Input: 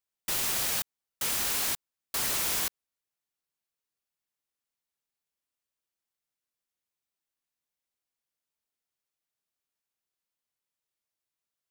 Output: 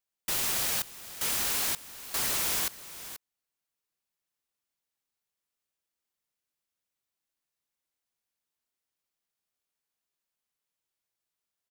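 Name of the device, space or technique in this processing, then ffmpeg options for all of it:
ducked delay: -filter_complex "[0:a]asplit=3[a][b][c];[b]adelay=483,volume=-5dB[d];[c]apad=whole_len=537365[e];[d][e]sidechaincompress=threshold=-39dB:ratio=6:attack=8.4:release=927[f];[a][f]amix=inputs=2:normalize=0"

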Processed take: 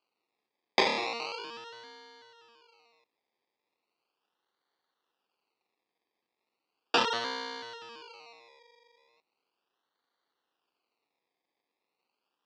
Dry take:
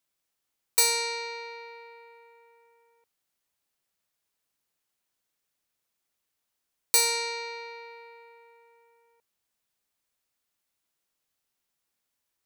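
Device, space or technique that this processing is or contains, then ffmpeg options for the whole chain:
circuit-bent sampling toy: -af "acrusher=samples=24:mix=1:aa=0.000001:lfo=1:lforange=14.4:lforate=0.37,highpass=430,equalizer=f=610:t=q:w=4:g=-8,equalizer=f=2.7k:t=q:w=4:g=7,equalizer=f=4.5k:t=q:w=4:g=10,lowpass=f=5.3k:w=0.5412,lowpass=f=5.3k:w=1.3066"

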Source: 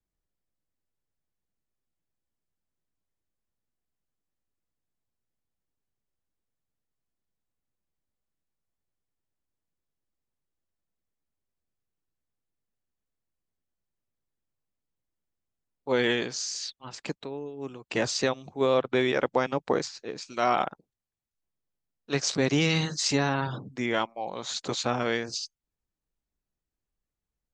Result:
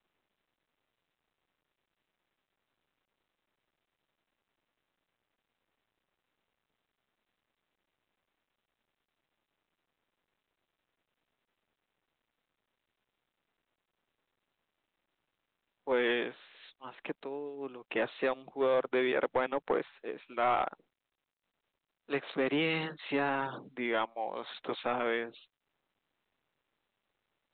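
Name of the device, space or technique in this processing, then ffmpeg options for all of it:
telephone: -af "highpass=300,lowpass=3.1k,asoftclip=type=tanh:threshold=-19dB,volume=-1.5dB" -ar 8000 -c:a pcm_mulaw

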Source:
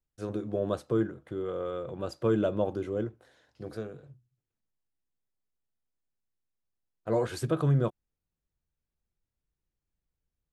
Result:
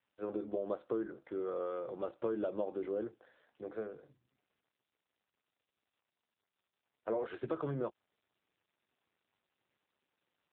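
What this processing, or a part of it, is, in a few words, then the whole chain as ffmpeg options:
voicemail: -af "highpass=320,lowpass=3.2k,acompressor=threshold=-31dB:ratio=8" -ar 8000 -c:a libopencore_amrnb -b:a 7400

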